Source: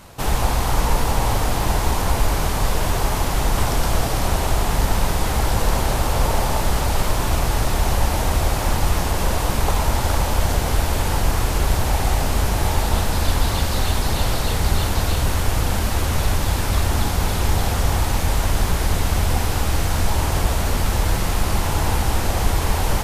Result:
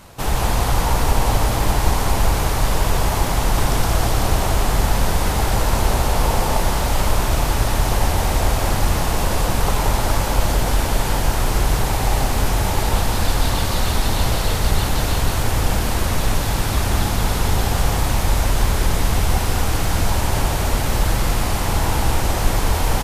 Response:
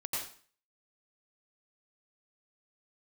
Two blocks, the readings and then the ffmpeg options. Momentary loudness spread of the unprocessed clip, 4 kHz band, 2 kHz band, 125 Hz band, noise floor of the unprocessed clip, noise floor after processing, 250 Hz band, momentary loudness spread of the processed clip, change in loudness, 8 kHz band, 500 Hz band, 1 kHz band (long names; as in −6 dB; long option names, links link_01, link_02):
1 LU, +1.5 dB, +1.5 dB, +0.5 dB, −22 dBFS, −21 dBFS, +1.5 dB, 1 LU, +1.0 dB, +1.5 dB, +1.5 dB, +1.5 dB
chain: -af "aecho=1:1:174:0.631"